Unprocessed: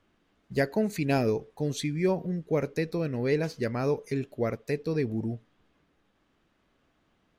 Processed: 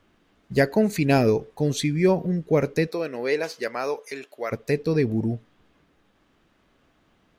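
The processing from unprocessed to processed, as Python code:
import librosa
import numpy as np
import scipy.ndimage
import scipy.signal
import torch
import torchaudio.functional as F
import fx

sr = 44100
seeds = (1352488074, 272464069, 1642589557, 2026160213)

y = fx.highpass(x, sr, hz=fx.line((2.86, 390.0), (4.51, 810.0)), slope=12, at=(2.86, 4.51), fade=0.02)
y = F.gain(torch.from_numpy(y), 6.5).numpy()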